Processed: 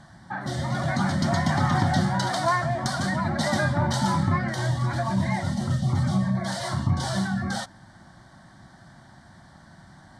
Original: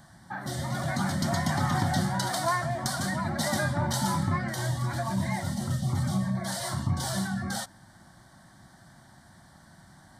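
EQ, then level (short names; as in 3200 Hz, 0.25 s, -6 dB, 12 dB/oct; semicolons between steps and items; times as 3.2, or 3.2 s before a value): air absorption 71 m; +4.5 dB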